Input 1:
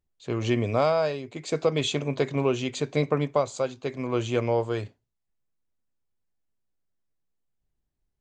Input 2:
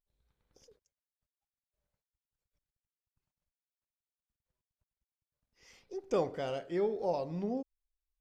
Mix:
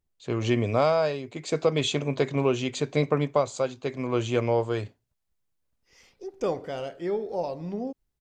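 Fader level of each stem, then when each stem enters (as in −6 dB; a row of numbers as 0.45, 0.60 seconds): +0.5, +3.0 decibels; 0.00, 0.30 seconds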